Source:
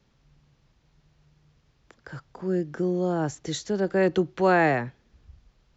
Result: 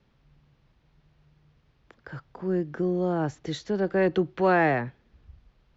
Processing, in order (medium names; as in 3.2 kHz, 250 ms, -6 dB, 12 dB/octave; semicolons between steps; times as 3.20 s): in parallel at -9 dB: saturation -21.5 dBFS, distortion -10 dB; on the sum: low-pass 3.8 kHz 12 dB/octave; trim -2.5 dB